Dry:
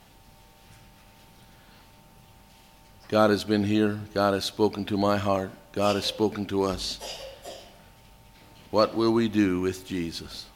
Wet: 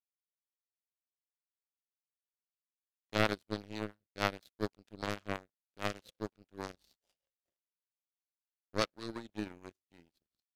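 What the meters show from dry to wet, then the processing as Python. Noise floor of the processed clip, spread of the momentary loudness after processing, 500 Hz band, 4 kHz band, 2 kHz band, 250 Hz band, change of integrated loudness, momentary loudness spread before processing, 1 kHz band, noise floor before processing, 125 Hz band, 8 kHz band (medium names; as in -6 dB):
under -85 dBFS, 13 LU, -15.5 dB, -12.0 dB, -6.0 dB, -17.0 dB, -13.0 dB, 13 LU, -12.5 dB, -54 dBFS, -12.5 dB, -13.0 dB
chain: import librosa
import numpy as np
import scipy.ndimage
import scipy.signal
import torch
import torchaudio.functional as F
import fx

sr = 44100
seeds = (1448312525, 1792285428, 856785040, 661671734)

y = fx.power_curve(x, sr, exponent=3.0)
y = fx.rotary(y, sr, hz=6.3)
y = F.gain(torch.from_numpy(y), 3.0).numpy()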